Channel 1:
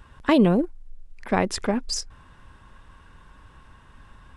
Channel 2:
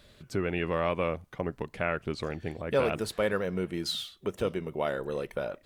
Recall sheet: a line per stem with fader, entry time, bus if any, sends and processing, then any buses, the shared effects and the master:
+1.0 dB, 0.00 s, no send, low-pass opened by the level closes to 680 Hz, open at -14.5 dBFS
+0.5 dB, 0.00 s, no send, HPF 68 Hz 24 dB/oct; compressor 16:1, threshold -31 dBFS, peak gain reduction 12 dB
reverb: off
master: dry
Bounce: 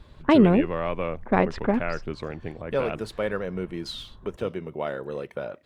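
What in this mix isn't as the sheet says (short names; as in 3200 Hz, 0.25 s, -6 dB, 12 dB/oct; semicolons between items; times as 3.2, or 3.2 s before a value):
stem 2: missing compressor 16:1, threshold -31 dBFS, peak gain reduction 12 dB; master: extra LPF 3300 Hz 6 dB/oct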